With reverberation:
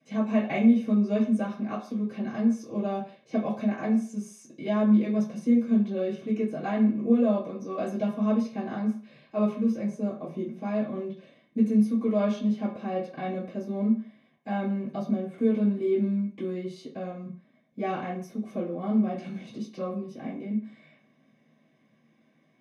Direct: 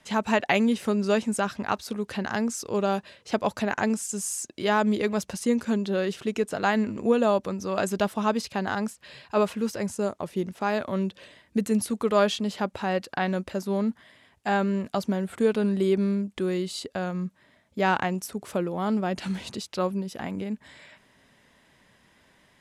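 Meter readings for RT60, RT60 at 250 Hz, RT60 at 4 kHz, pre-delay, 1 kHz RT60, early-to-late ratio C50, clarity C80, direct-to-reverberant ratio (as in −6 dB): 0.45 s, 0.35 s, 0.50 s, 3 ms, 0.45 s, 7.5 dB, 11.0 dB, −10.0 dB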